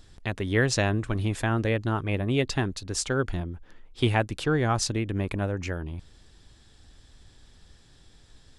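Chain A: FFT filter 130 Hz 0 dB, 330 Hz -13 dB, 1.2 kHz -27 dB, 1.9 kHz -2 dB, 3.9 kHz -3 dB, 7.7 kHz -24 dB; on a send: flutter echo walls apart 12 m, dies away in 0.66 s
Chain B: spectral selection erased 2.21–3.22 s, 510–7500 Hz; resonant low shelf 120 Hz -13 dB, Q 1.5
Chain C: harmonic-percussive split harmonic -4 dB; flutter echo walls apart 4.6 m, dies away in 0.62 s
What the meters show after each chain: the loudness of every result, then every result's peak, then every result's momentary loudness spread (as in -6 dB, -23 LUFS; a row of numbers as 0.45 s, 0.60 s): -30.0 LUFS, -28.0 LUFS, -25.5 LUFS; -12.0 dBFS, -7.0 dBFS, -7.5 dBFS; 9 LU, 12 LU, 11 LU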